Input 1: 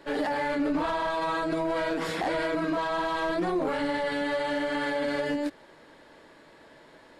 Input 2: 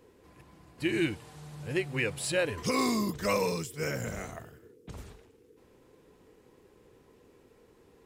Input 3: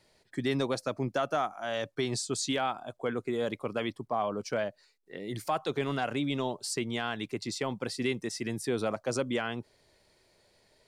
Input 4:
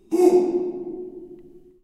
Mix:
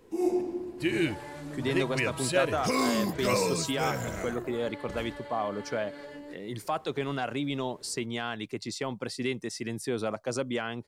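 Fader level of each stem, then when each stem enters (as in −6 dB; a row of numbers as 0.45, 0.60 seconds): −15.0, +1.0, −0.5, −11.5 decibels; 0.85, 0.00, 1.20, 0.00 seconds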